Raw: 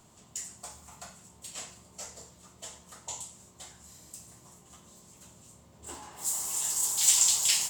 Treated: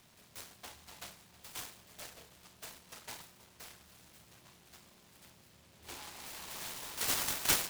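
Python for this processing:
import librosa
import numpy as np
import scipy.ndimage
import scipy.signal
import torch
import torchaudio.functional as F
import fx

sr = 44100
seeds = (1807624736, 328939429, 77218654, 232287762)

y = fx.lowpass_res(x, sr, hz=2300.0, q=3.0)
y = fx.tilt_shelf(y, sr, db=-4.5, hz=970.0)
y = y + 10.0 ** (-18.0 / 20.0) * np.pad(y, (int(319 * sr / 1000.0), 0))[:len(y)]
y = fx.noise_mod_delay(y, sr, seeds[0], noise_hz=2700.0, depth_ms=0.2)
y = y * librosa.db_to_amplitude(-3.0)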